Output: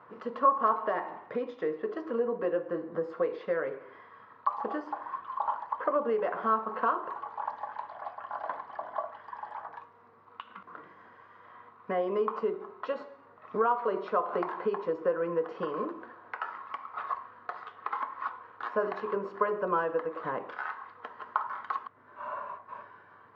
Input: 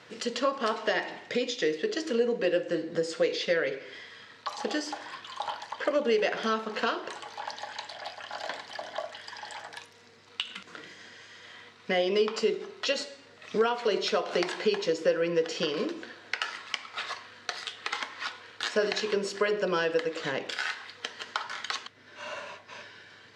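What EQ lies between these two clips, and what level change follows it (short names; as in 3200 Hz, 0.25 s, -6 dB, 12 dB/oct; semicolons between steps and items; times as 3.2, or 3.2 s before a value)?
synth low-pass 1100 Hz, resonance Q 4.9; -5.0 dB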